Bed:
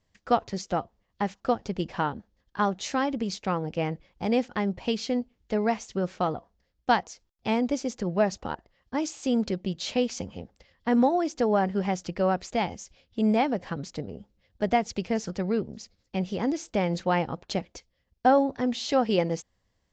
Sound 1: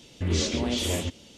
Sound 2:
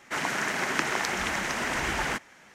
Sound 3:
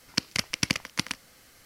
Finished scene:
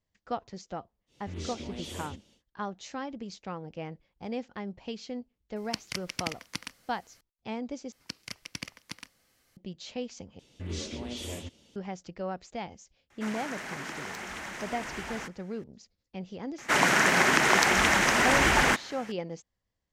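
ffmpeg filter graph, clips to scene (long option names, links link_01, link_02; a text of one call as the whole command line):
ffmpeg -i bed.wav -i cue0.wav -i cue1.wav -i cue2.wav -filter_complex "[1:a]asplit=2[link_01][link_02];[3:a]asplit=2[link_03][link_04];[2:a]asplit=2[link_05][link_06];[0:a]volume=-10.5dB[link_07];[link_04]bandreject=frequency=1400:width=20[link_08];[link_05]asoftclip=type=tanh:threshold=-20.5dB[link_09];[link_06]alimiter=level_in=8.5dB:limit=-1dB:release=50:level=0:latency=1[link_10];[link_07]asplit=3[link_11][link_12][link_13];[link_11]atrim=end=7.924[link_14];[link_08]atrim=end=1.65,asetpts=PTS-STARTPTS,volume=-13dB[link_15];[link_12]atrim=start=9.566:end=10.394[link_16];[link_02]atrim=end=1.37,asetpts=PTS-STARTPTS,volume=-10.5dB[link_17];[link_13]atrim=start=11.756[link_18];[link_01]atrim=end=1.37,asetpts=PTS-STARTPTS,volume=-13dB,afade=type=in:duration=0.1,afade=type=out:start_time=1.27:duration=0.1,adelay=1060[link_19];[link_03]atrim=end=1.65,asetpts=PTS-STARTPTS,volume=-8dB,afade=type=in:duration=0.004:curve=hsin,afade=type=out:start_time=1.646:duration=0.004:curve=hsin,adelay=5560[link_20];[link_09]atrim=end=2.54,asetpts=PTS-STARTPTS,volume=-9dB,afade=type=in:duration=0.004:curve=hsin,afade=type=out:start_time=2.536:duration=0.004:curve=hsin,adelay=13100[link_21];[link_10]atrim=end=2.54,asetpts=PTS-STARTPTS,volume=-2dB,afade=type=in:duration=0.004:curve=hsin,afade=type=out:start_time=2.536:duration=0.004:curve=hsin,adelay=16580[link_22];[link_14][link_15]acrossfade=duration=0.004:curve1=hsin:curve2=hsin[link_23];[link_23][link_16]acrossfade=duration=0.004:curve1=hsin:curve2=hsin[link_24];[link_24][link_17]acrossfade=duration=0.004:curve1=hsin:curve2=hsin[link_25];[link_25][link_18]acrossfade=duration=0.004:curve1=hsin:curve2=hsin[link_26];[link_26][link_19][link_20][link_21][link_22]amix=inputs=5:normalize=0" out.wav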